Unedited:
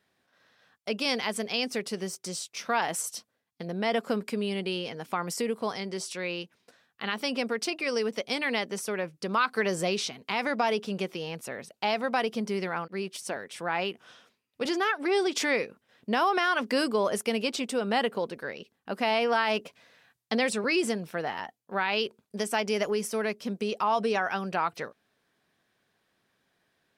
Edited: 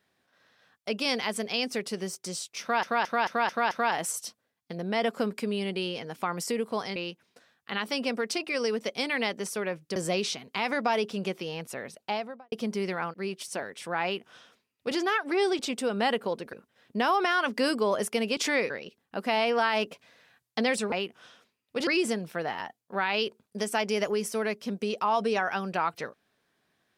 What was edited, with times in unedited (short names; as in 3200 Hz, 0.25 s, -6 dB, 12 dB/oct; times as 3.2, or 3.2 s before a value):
2.61 stutter 0.22 s, 6 plays
5.86–6.28 cut
9.28–9.7 cut
11.7–12.26 studio fade out
13.77–14.72 copy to 20.66
15.33–15.66 swap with 17.5–18.44